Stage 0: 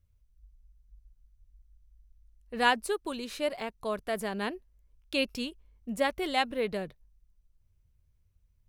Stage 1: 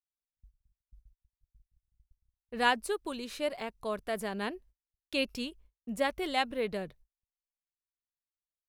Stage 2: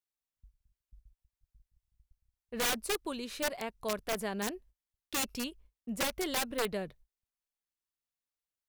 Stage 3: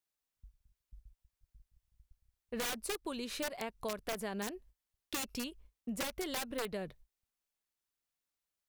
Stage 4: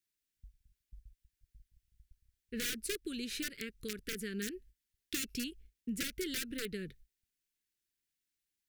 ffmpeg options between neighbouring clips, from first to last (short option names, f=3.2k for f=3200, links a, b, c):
-af "agate=range=-44dB:threshold=-54dB:ratio=16:detection=peak,volume=-2dB"
-af "aeval=exprs='(mod(17.8*val(0)+1,2)-1)/17.8':c=same"
-af "acompressor=threshold=-38dB:ratio=6,volume=2.5dB"
-af "asuperstop=centerf=810:order=8:qfactor=0.75,volume=1.5dB"